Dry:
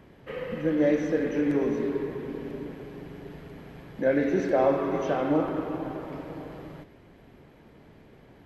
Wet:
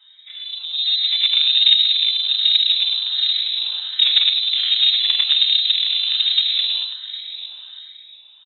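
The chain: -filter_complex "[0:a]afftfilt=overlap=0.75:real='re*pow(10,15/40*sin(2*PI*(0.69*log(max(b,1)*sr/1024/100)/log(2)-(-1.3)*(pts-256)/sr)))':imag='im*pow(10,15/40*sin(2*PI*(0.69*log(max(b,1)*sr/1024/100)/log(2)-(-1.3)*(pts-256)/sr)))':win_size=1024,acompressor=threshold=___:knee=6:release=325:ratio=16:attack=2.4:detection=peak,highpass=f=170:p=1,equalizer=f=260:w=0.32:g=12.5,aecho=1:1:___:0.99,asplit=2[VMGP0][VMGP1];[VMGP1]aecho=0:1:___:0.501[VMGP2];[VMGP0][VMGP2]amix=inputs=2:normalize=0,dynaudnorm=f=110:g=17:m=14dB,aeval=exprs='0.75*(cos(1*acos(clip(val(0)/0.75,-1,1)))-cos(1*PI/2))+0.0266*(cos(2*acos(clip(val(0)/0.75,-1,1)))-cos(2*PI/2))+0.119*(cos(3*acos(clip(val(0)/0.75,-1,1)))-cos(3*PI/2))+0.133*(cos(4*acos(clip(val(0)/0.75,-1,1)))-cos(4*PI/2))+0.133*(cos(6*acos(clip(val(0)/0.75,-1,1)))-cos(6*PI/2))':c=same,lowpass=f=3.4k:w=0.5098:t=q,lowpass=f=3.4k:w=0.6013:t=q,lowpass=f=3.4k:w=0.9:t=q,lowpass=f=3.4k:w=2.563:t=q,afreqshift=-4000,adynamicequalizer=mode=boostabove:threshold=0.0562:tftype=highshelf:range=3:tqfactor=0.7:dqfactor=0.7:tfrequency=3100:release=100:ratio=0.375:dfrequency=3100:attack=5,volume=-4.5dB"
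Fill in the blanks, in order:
-35dB, 4.1, 102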